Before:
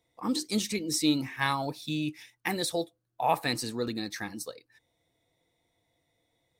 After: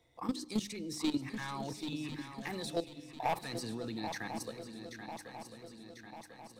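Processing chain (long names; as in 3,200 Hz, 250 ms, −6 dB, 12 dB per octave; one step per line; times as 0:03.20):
hard clipping −22.5 dBFS, distortion −12 dB
high-shelf EQ 7,500 Hz −8 dB
mains-hum notches 50/100/150/200/250/300 Hz
output level in coarse steps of 14 dB
low-shelf EQ 93 Hz +7 dB
feedback echo with a long and a short gap by turns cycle 1,045 ms, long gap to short 3 to 1, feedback 43%, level −11.5 dB
on a send at −22.5 dB: convolution reverb RT60 1.4 s, pre-delay 78 ms
on the sum: multiband upward and downward compressor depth 40%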